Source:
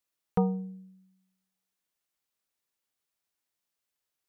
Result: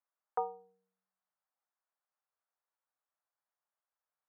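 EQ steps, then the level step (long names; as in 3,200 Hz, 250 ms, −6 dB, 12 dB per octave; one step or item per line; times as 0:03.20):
high-pass filter 600 Hz 24 dB per octave
low-pass filter 1,500 Hz 24 dB per octave
+1.0 dB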